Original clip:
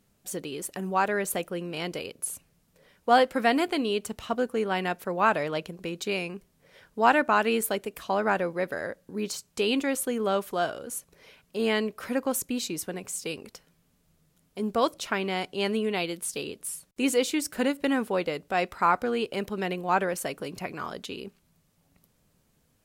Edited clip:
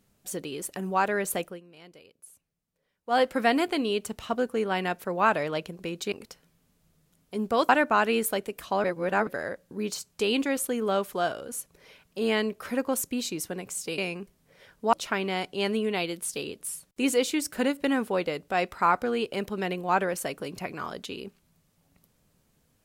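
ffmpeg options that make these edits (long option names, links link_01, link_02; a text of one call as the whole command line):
ffmpeg -i in.wav -filter_complex "[0:a]asplit=9[link_01][link_02][link_03][link_04][link_05][link_06][link_07][link_08][link_09];[link_01]atrim=end=1.61,asetpts=PTS-STARTPTS,afade=type=out:start_time=1.42:duration=0.19:silence=0.125893[link_10];[link_02]atrim=start=1.61:end=3.05,asetpts=PTS-STARTPTS,volume=-18dB[link_11];[link_03]atrim=start=3.05:end=6.122,asetpts=PTS-STARTPTS,afade=type=in:duration=0.19:silence=0.125893[link_12];[link_04]atrim=start=13.358:end=14.932[link_13];[link_05]atrim=start=7.068:end=8.222[link_14];[link_06]atrim=start=8.218:end=8.652,asetpts=PTS-STARTPTS,areverse[link_15];[link_07]atrim=start=8.648:end=13.362[link_16];[link_08]atrim=start=6.118:end=7.072[link_17];[link_09]atrim=start=14.928[link_18];[link_10][link_11][link_12]concat=n=3:v=0:a=1[link_19];[link_19][link_13]acrossfade=duration=0.004:curve1=hsin:curve2=hsin[link_20];[link_20][link_14]acrossfade=duration=0.004:curve1=hsin:curve2=hsin[link_21];[link_21][link_15]acrossfade=duration=0.004:curve1=hsin:curve2=hsin[link_22];[link_22][link_16]acrossfade=duration=0.004:curve1=hsin:curve2=hsin[link_23];[link_23][link_17]acrossfade=duration=0.004:curve1=hsin:curve2=hsin[link_24];[link_24][link_18]acrossfade=duration=0.004:curve1=hsin:curve2=hsin" out.wav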